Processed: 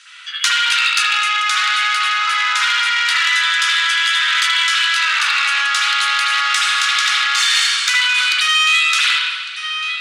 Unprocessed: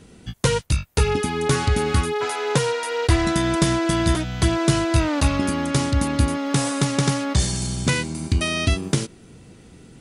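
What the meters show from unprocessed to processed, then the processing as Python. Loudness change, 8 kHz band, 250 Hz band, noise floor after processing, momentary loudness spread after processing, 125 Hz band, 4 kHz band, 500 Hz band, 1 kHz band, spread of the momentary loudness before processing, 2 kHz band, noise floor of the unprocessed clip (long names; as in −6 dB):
+8.0 dB, +5.5 dB, below −40 dB, −27 dBFS, 3 LU, below −40 dB, +15.5 dB, below −25 dB, +8.0 dB, 4 LU, +15.5 dB, −48 dBFS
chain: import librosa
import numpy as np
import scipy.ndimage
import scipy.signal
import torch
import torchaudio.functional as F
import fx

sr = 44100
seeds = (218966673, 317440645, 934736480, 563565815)

p1 = scipy.signal.sosfilt(scipy.signal.ellip(4, 1.0, 80, 1300.0, 'highpass', fs=sr, output='sos'), x)
p2 = p1 + fx.echo_single(p1, sr, ms=1155, db=-16.5, dry=0)
p3 = np.clip(p2, -10.0 ** (-13.5 / 20.0), 10.0 ** (-13.5 / 20.0))
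p4 = fx.air_absorb(p3, sr, metres=96.0)
p5 = fx.rev_spring(p4, sr, rt60_s=1.4, pass_ms=(52, 59), chirp_ms=25, drr_db=-10.0)
p6 = fx.over_compress(p5, sr, threshold_db=-28.0, ratio=-0.5)
p7 = p5 + (p6 * 10.0 ** (-1.5 / 20.0))
p8 = fx.high_shelf(p7, sr, hz=2200.0, db=10.0)
p9 = fx.transformer_sat(p8, sr, knee_hz=3600.0)
y = p9 * 10.0 ** (1.0 / 20.0)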